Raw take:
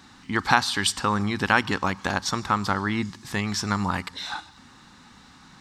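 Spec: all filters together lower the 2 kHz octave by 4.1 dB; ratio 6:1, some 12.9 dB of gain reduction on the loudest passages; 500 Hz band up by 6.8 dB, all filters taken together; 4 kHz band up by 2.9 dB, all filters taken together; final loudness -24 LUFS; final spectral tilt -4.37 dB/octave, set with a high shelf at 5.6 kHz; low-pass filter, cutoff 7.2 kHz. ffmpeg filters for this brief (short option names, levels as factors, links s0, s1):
-af "lowpass=7200,equalizer=f=500:t=o:g=9,equalizer=f=2000:t=o:g=-7.5,equalizer=f=4000:t=o:g=8,highshelf=f=5600:g=-5,acompressor=threshold=0.0447:ratio=6,volume=2.37"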